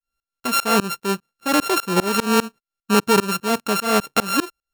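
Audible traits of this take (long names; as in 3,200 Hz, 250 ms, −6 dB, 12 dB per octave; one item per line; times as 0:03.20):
a buzz of ramps at a fixed pitch in blocks of 32 samples
tremolo saw up 5 Hz, depth 100%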